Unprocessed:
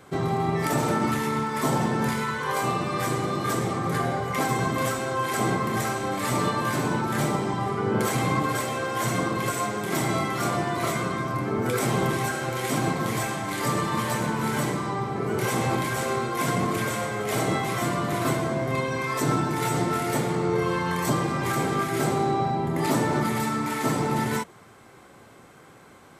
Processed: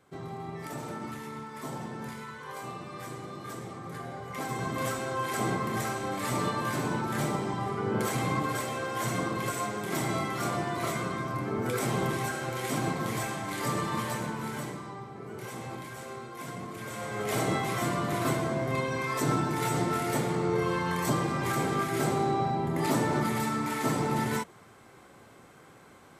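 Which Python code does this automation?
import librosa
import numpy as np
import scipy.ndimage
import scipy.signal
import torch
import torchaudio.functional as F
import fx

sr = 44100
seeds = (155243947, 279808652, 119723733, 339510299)

y = fx.gain(x, sr, db=fx.line((4.04, -14.0), (4.9, -5.0), (13.96, -5.0), (15.13, -14.5), (16.76, -14.5), (17.22, -3.5)))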